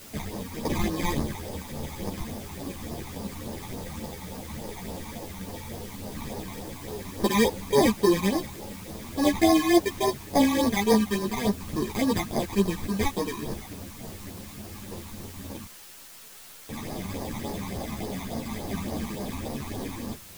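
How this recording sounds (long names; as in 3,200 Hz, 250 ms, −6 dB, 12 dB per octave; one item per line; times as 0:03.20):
aliases and images of a low sample rate 1,400 Hz, jitter 0%
phaser sweep stages 12, 3.5 Hz, lowest notch 490–2,900 Hz
a quantiser's noise floor 8 bits, dither triangular
a shimmering, thickened sound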